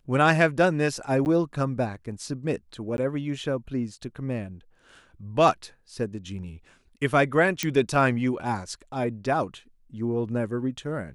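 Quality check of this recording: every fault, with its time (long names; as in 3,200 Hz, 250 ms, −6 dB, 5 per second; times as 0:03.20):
0:01.25–0:01.26: drop-out 9.6 ms
0:02.97–0:02.98: drop-out 11 ms
0:07.63: click −9 dBFS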